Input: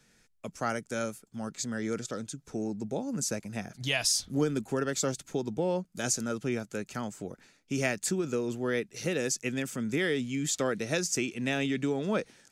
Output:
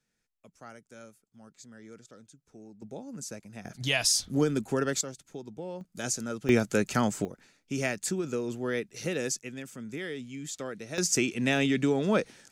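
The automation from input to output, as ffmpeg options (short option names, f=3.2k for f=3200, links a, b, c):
-af "asetnsamples=n=441:p=0,asendcmd='2.82 volume volume -8dB;3.65 volume volume 2dB;5.01 volume volume -9.5dB;5.81 volume volume -2dB;6.49 volume volume 9.5dB;7.25 volume volume -1dB;9.39 volume volume -8dB;10.98 volume volume 4dB',volume=-16dB"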